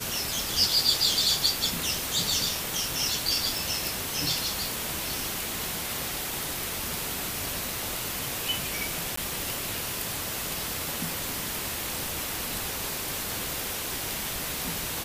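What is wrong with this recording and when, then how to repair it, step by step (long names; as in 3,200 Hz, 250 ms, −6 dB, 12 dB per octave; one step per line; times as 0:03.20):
0:03.58: click
0:09.16–0:09.17: drop-out 14 ms
0:13.64: click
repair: click removal
repair the gap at 0:09.16, 14 ms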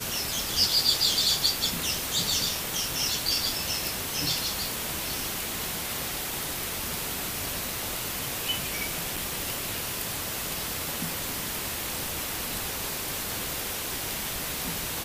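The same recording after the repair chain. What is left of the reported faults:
none of them is left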